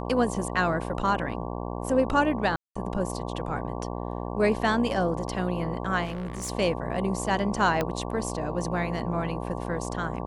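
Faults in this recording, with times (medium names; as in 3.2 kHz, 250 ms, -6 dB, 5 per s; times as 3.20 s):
buzz 60 Hz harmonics 19 -33 dBFS
2.56–2.75 s: dropout 195 ms
6.04–6.50 s: clipped -29 dBFS
7.81 s: pop -12 dBFS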